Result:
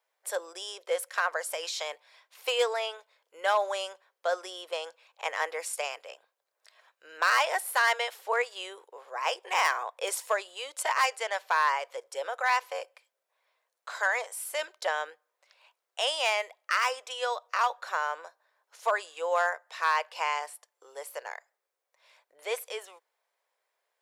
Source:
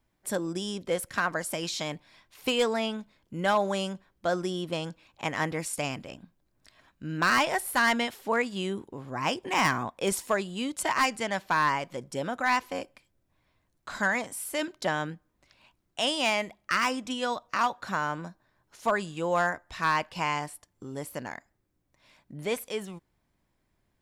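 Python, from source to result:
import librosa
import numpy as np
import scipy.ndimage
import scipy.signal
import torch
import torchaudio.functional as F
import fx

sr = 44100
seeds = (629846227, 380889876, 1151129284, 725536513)

y = scipy.signal.sosfilt(scipy.signal.ellip(4, 1.0, 50, 470.0, 'highpass', fs=sr, output='sos'), x)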